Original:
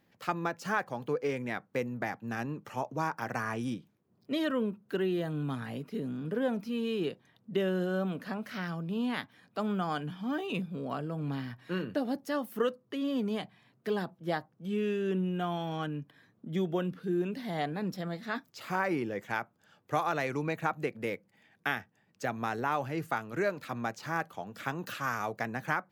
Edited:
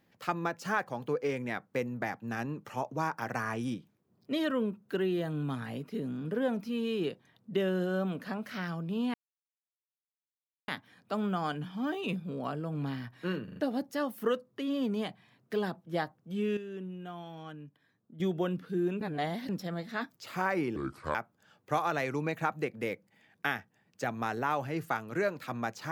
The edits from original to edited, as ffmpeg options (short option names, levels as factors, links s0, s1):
-filter_complex "[0:a]asplit=11[s0][s1][s2][s3][s4][s5][s6][s7][s8][s9][s10];[s0]atrim=end=9.14,asetpts=PTS-STARTPTS,afade=t=out:st=9.136:d=0.004:c=hsin,apad=pad_dur=1.54[s11];[s1]atrim=start=9.14:end=11.942,asetpts=PTS-STARTPTS,afade=t=in:d=0.004:c=hsin[s12];[s2]atrim=start=11.898:end=11.942[s13];[s3]atrim=start=11.898:end=11.942[s14];[s4]atrim=start=11.898:end=14.912[s15];[s5]atrim=start=14.908:end=16.542,asetpts=PTS-STARTPTS,volume=0.316[s16];[s6]atrim=start=16.538:end=17.352[s17];[s7]atrim=start=17.348:end=17.832,asetpts=PTS-STARTPTS,areverse[s18];[s8]atrim=start=17.828:end=19.104[s19];[s9]atrim=start=19.1:end=19.36,asetpts=PTS-STARTPTS,asetrate=29547,aresample=44100,atrim=end_sample=17113,asetpts=PTS-STARTPTS[s20];[s10]atrim=start=19.356[s21];[s11][s12]concat=n=2:v=0:a=1[s22];[s22][s13]acrossfade=d=0.004:c1=hsin:c2=hsin[s23];[s23][s14]acrossfade=d=0.004:c1=hsin:c2=hsin[s24];[s24][s15]acrossfade=d=0.004:c1=hsin:c2=hsin[s25];[s25][s16]acrossfade=d=0.004:c1=hsin:c2=hsin[s26];[s26][s17]acrossfade=d=0.004:c1=hsin:c2=hsin[s27];[s27][s18]acrossfade=d=0.004:c1=hsin:c2=hsin[s28];[s28][s19]acrossfade=d=0.004:c1=hsin:c2=hsin[s29];[s29][s20]acrossfade=d=0.004:c1=hsin:c2=hsin[s30];[s30][s21]acrossfade=d=0.004:c1=hsin:c2=hsin"